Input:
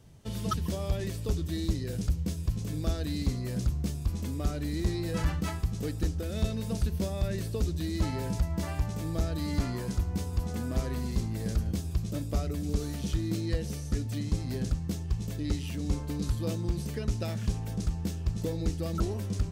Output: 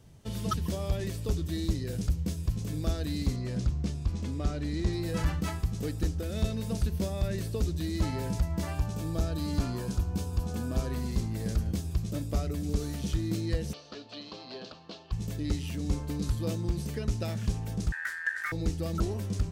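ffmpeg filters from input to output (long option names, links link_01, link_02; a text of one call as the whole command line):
ffmpeg -i in.wav -filter_complex "[0:a]asettb=1/sr,asplit=3[link_01][link_02][link_03];[link_01]atrim=end=3.364[link_04];[link_02]atrim=start=3.36:end=4.93,asetpts=PTS-STARTPTS,afade=type=in:duration=0.004:curve=qsin,afade=type=out:start_time=1.566:duration=0.004:curve=qsin,lowpass=6500[link_05];[link_03]atrim=start=4.926[link_06];[link_04][link_05]acrossfade=duration=0.004:curve1=hsin:curve2=qsin[link_07];[link_07][link_06]acrossfade=duration=0.004:curve1=qsin:curve2=hsin,asettb=1/sr,asplit=3[link_08][link_09][link_10];[link_08]atrim=end=8.744[link_11];[link_09]atrim=start=8.74:end=10.92,asetpts=PTS-STARTPTS,afade=type=in:duration=0.004:curve=qsin,afade=type=out:start_time=2.176:duration=0.004:curve=qsin,bandreject=frequency=2000:width=6[link_12];[link_10]atrim=start=10.916[link_13];[link_11][link_12]acrossfade=duration=0.004:curve1=hsin:curve2=qsin[link_14];[link_14][link_13]acrossfade=duration=0.004:curve1=qsin:curve2=hsin,asplit=3[link_15][link_16][link_17];[link_15]afade=type=out:start_time=13.72:duration=0.02[link_18];[link_16]highpass=500,equalizer=frequency=630:width_type=q:width=4:gain=6,equalizer=frequency=1100:width_type=q:width=4:gain=5,equalizer=frequency=2000:width_type=q:width=4:gain=-9,equalizer=frequency=2900:width_type=q:width=4:gain=5,equalizer=frequency=4300:width_type=q:width=4:gain=8,lowpass=frequency=4400:width=0.5412,lowpass=frequency=4400:width=1.3066,afade=type=in:start_time=13.72:duration=0.02,afade=type=out:start_time=15.11:duration=0.02[link_19];[link_17]afade=type=in:start_time=15.11:duration=0.02[link_20];[link_18][link_19][link_20]amix=inputs=3:normalize=0,asettb=1/sr,asplit=3[link_21][link_22][link_23];[link_21]atrim=end=17.924[link_24];[link_22]atrim=start=17.92:end=18.52,asetpts=PTS-STARTPTS,afade=type=in:duration=0.004:curve=qsin,afade=type=out:start_time=0.596:duration=0.004:curve=qsin,aeval=exprs='val(0)*sin(2*PI*1700*n/s)':channel_layout=same[link_25];[link_23]atrim=start=18.516[link_26];[link_24][link_25]acrossfade=duration=0.004:curve1=hsin:curve2=qsin[link_27];[link_27][link_26]acrossfade=duration=0.004:curve1=qsin:curve2=hsin" out.wav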